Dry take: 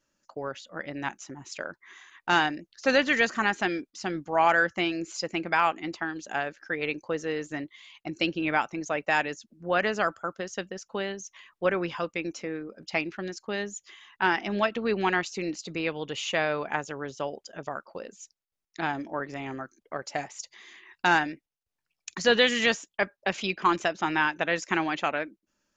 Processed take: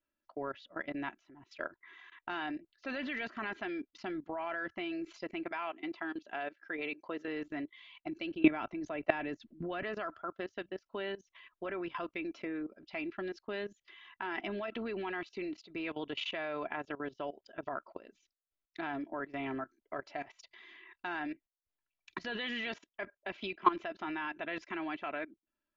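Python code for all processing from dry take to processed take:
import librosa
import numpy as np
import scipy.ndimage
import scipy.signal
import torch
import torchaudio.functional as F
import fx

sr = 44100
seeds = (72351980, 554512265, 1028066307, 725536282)

y = fx.chain(x, sr, fx.highpass(hz=290.0, slope=6),
    fx.dynamic_eq(hz=1500.0, q=1.1, threshold_db=-36.0, ratio=4.0, max_db=-4), at=(5.44, 7.28))
y = fx.chain(y, sr, fx.low_shelf(hz=390.0, db=9.0),
    fx.band_squash(depth_pct=100), at=(8.44, 9.83))
y = scipy.signal.sosfilt(scipy.signal.butter(4, 3700.0, 'lowpass', fs=sr, output='sos'), y)
y = y + 0.54 * np.pad(y, (int(3.0 * sr / 1000.0), 0))[:len(y)]
y = fx.level_steps(y, sr, step_db=18)
y = y * librosa.db_to_amplitude(-1.5)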